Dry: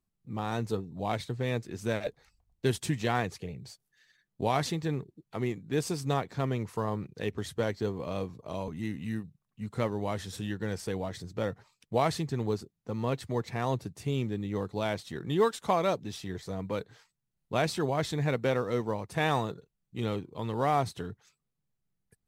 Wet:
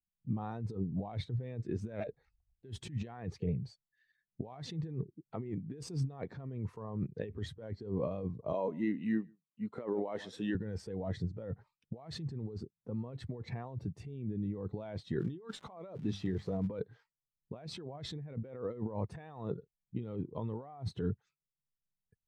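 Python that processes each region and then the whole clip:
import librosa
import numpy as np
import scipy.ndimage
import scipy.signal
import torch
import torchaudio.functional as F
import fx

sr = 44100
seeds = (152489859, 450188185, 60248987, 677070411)

y = fx.chain(x, sr, fx.highpass(hz=290.0, slope=12),
    fx.echo_single(ms=144, db=-21.0), at=(8.53, 10.55))
y = fx.hum_notches(y, sr, base_hz=50, count=4, at=(15.19, 16.67), fade=0.02)
y = fx.dmg_crackle(y, sr, seeds[0], per_s=320.0, level_db=-37.0, at=(15.19, 16.67), fade=0.02)
y = fx.over_compress(y, sr, threshold_db=-38.0, ratio=-1.0)
y = fx.high_shelf(y, sr, hz=5700.0, db=-12.0)
y = fx.spectral_expand(y, sr, expansion=1.5)
y = F.gain(torch.from_numpy(y), -1.0).numpy()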